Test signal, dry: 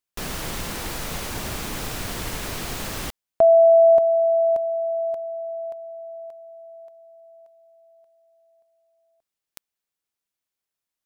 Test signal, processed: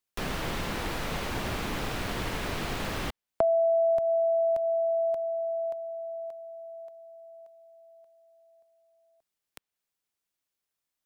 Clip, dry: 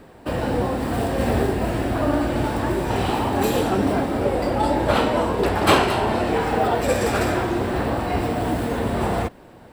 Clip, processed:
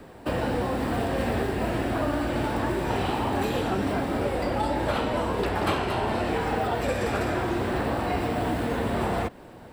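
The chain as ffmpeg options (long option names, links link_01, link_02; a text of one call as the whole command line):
ffmpeg -i in.wav -filter_complex "[0:a]acrossover=split=160|1200|4100[link_01][link_02][link_03][link_04];[link_01]acompressor=threshold=-33dB:ratio=3[link_05];[link_02]acompressor=threshold=-25dB:ratio=8[link_06];[link_03]acompressor=threshold=-35dB:ratio=3[link_07];[link_04]acompressor=threshold=-50dB:ratio=3[link_08];[link_05][link_06][link_07][link_08]amix=inputs=4:normalize=0" out.wav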